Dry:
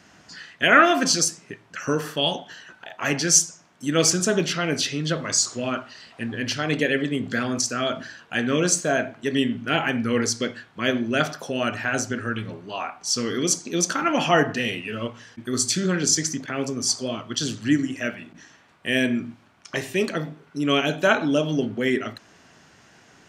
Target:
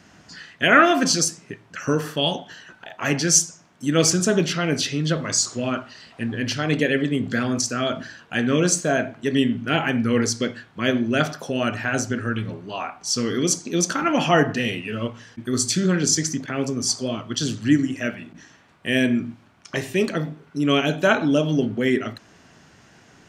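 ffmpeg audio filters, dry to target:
-af "lowshelf=f=290:g=5.5"

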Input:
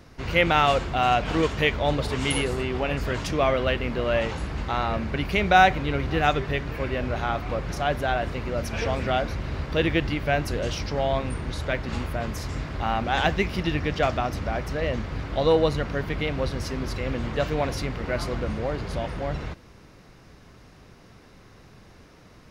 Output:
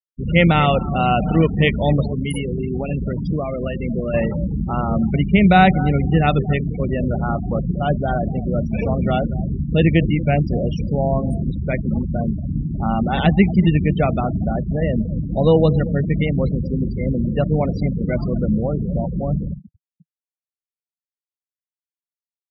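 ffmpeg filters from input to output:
-filter_complex "[0:a]equalizer=f=200:t=o:w=0.54:g=8.5,bandreject=f=1.6k:w=8.2,aecho=1:1:234|468|702:0.178|0.0427|0.0102,asettb=1/sr,asplit=3[a][b][c];[a]atrim=end=2.014[d];[b]atrim=start=2.01:end=4.14,asetpts=PTS-STARTPTS,afade=t=in:d=0.004:c=qsin,afade=t=out:st=2.126:d=0.004:c=qsin,acompressor=threshold=-24dB:ratio=20[e];[c]atrim=start=4.136[f];[d][e]acrossfade=d=0.004:c1=hsin:c2=qsin[g];[g][f]acrossfade=d=0.004:c1=qsin:c2=hsin,afftfilt=real='re*gte(hypot(re,im),0.0708)':imag='im*gte(hypot(re,im),0.0708)':win_size=1024:overlap=0.75,equalizer=f=160:t=o:w=0.67:g=7,equalizer=f=1k:t=o:w=0.67:g=-5,equalizer=f=6.3k:t=o:w=0.67:g=-11,volume=4.5dB"

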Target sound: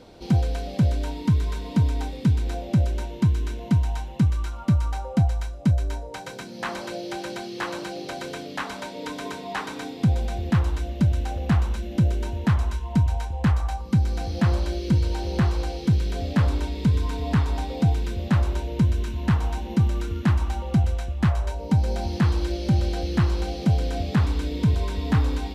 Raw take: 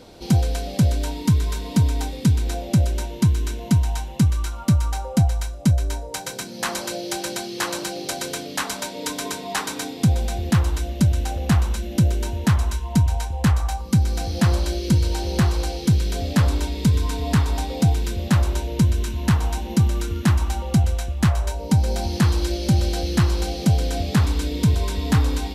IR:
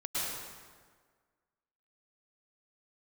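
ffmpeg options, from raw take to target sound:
-filter_complex "[0:a]acrossover=split=3700[a][b];[b]acompressor=threshold=-35dB:ratio=4:attack=1:release=60[c];[a][c]amix=inputs=2:normalize=0,highshelf=f=5.7k:g=-9.5,volume=-2.5dB"

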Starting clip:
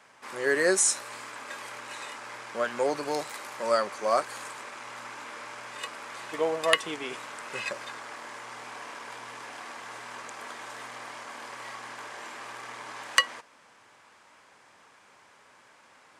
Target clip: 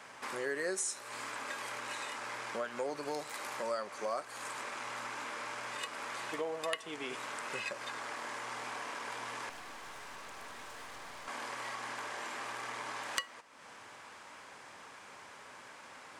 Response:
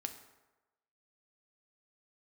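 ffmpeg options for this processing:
-filter_complex "[0:a]acompressor=threshold=-45dB:ratio=3,asettb=1/sr,asplit=3[a][b][c];[a]atrim=end=9.494[d];[b]atrim=start=9.49:end=11.28,asetpts=PTS-STARTPTS,afade=t=in:d=0.004:c=qsin,afade=t=out:st=1.786:d=0.004:c=qsin,aeval=exprs='(tanh(316*val(0)+0.75)-tanh(0.75))/316':c=same[e];[c]atrim=start=11.276[f];[d][e]acrossfade=d=0.004:c1=hsin:c2=qsin[g];[g][f]acrossfade=d=0.004:c1=qsin:c2=hsin,asplit=2[h][i];[1:a]atrim=start_sample=2205[j];[i][j]afir=irnorm=-1:irlink=0,volume=-8.5dB[k];[h][k]amix=inputs=2:normalize=0,volume=3dB"

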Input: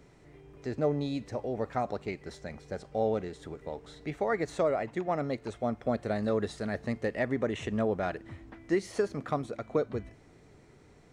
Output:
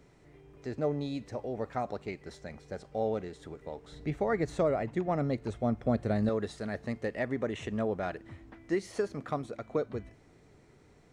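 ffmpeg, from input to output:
-filter_complex "[0:a]asettb=1/sr,asplit=3[a][b][c];[a]atrim=end=3.924[d];[b]atrim=start=3.92:end=6.29,asetpts=PTS-STARTPTS,afade=t=in:d=0.004:c=qsin,afade=t=out:st=2.366:d=0.004:c=qsin,lowshelf=f=260:g=10.5[e];[c]atrim=start=6.286[f];[d][e]acrossfade=d=0.004:c1=hsin:c2=qsin[g];[g][f]acrossfade=d=0.004:c1=qsin:c2=hsin,volume=-2.5dB"

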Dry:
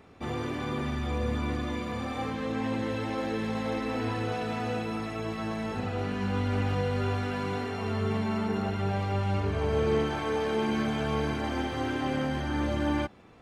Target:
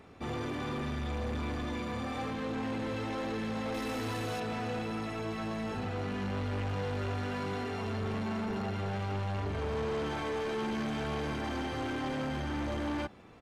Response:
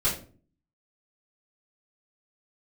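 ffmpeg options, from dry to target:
-filter_complex "[0:a]asoftclip=type=tanh:threshold=-31dB,asettb=1/sr,asplit=3[a][b][c];[a]atrim=end=3.744[d];[b]atrim=start=3.74:end=4.4,asetpts=PTS-STARTPTS,afade=t=in:d=0.004:c=qsin,afade=t=out:st=0.656:d=0.004:c=qsin,aemphasis=mode=production:type=50fm[e];[c]atrim=start=4.396[f];[d][e]acrossfade=d=0.004:c1=hsin:c2=qsin[g];[g][f]acrossfade=d=0.004:c1=qsin:c2=hsin,aresample=32000,aresample=44100"

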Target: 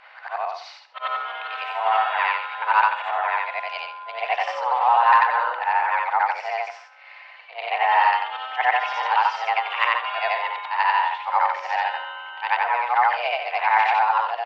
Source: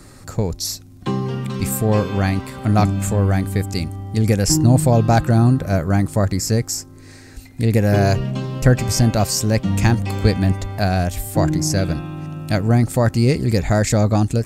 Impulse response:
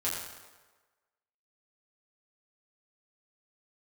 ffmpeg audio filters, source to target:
-filter_complex "[0:a]afftfilt=real='re':imag='-im':win_size=8192:overlap=0.75,highpass=f=560:t=q:w=0.5412,highpass=f=560:t=q:w=1.307,lowpass=f=3.1k:t=q:w=0.5176,lowpass=f=3.1k:t=q:w=0.7071,lowpass=f=3.1k:t=q:w=1.932,afreqshift=240,asplit=2[a][b];[b]adelay=134.1,volume=-17dB,highshelf=f=4k:g=-3.02[c];[a][c]amix=inputs=2:normalize=0,acontrast=62,volume=3.5dB"

